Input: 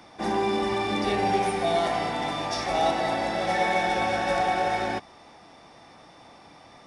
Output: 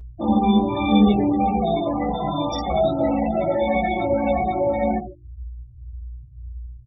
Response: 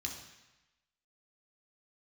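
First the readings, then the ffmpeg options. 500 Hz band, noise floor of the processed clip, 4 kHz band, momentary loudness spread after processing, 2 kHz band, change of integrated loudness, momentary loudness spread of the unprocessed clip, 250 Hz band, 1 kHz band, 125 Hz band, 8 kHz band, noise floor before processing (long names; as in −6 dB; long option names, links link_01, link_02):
+5.0 dB, −44 dBFS, −2.0 dB, 21 LU, −5.0 dB, +5.0 dB, 5 LU, +12.5 dB, +1.5 dB, +10.0 dB, below −10 dB, −51 dBFS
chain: -filter_complex "[0:a]acrossover=split=360|3000[link_01][link_02][link_03];[link_02]acompressor=threshold=-27dB:ratio=6[link_04];[link_01][link_04][link_03]amix=inputs=3:normalize=0,asplit=2[link_05][link_06];[1:a]atrim=start_sample=2205[link_07];[link_06][link_07]afir=irnorm=-1:irlink=0,volume=-2dB[link_08];[link_05][link_08]amix=inputs=2:normalize=0,aeval=exprs='val(0)+0.00708*(sin(2*PI*60*n/s)+sin(2*PI*2*60*n/s)/2+sin(2*PI*3*60*n/s)/3+sin(2*PI*4*60*n/s)/4+sin(2*PI*5*60*n/s)/5)':channel_layout=same,aemphasis=mode=reproduction:type=75fm,afftfilt=real='re*gte(hypot(re,im),0.0631)':imag='im*gte(hypot(re,im),0.0631)':win_size=1024:overlap=0.75,acompressor=mode=upward:threshold=-37dB:ratio=2.5,equalizer=frequency=2000:width_type=o:width=1.2:gain=-5,aresample=22050,aresample=44100,bandreject=frequency=50:width_type=h:width=6,bandreject=frequency=100:width_type=h:width=6,bandreject=frequency=150:width_type=h:width=6,bandreject=frequency=200:width_type=h:width=6,bandreject=frequency=250:width_type=h:width=6,bandreject=frequency=300:width_type=h:width=6,bandreject=frequency=350:width_type=h:width=6,bandreject=frequency=400:width_type=h:width=6,bandreject=frequency=450:width_type=h:width=6,asplit=2[link_09][link_10];[link_10]adelay=14,volume=-5dB[link_11];[link_09][link_11]amix=inputs=2:normalize=0,asplit=2[link_12][link_13];[link_13]adelay=2.3,afreqshift=-1.8[link_14];[link_12][link_14]amix=inputs=2:normalize=1,volume=8.5dB"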